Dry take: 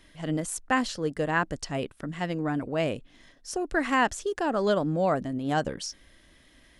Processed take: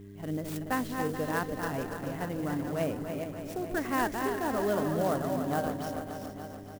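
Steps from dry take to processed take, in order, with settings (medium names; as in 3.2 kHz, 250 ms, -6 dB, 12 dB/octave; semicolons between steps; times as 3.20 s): backward echo that repeats 216 ms, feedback 49%, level -6 dB; on a send: feedback delay 288 ms, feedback 59%, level -8 dB; on the sum: mains buzz 100 Hz, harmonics 4, -42 dBFS -2 dB/octave; peaking EQ 4.5 kHz -8.5 dB 2 oct; sampling jitter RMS 0.031 ms; trim -5 dB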